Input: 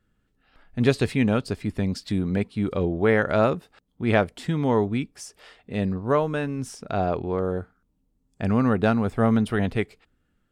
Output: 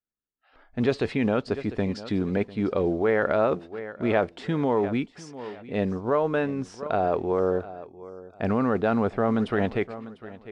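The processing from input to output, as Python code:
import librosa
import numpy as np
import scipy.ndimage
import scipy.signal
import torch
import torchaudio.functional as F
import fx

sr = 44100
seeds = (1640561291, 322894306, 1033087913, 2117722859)

p1 = fx.mod_noise(x, sr, seeds[0], snr_db=34)
p2 = fx.bass_treble(p1, sr, bass_db=-12, treble_db=7)
p3 = p2 + fx.echo_feedback(p2, sr, ms=698, feedback_pct=27, wet_db=-18.5, dry=0)
p4 = fx.noise_reduce_blind(p3, sr, reduce_db=28)
p5 = fx.spacing_loss(p4, sr, db_at_10k=33)
p6 = fx.over_compress(p5, sr, threshold_db=-29.0, ratio=-0.5)
y = p5 + F.gain(torch.from_numpy(p6), -1.5).numpy()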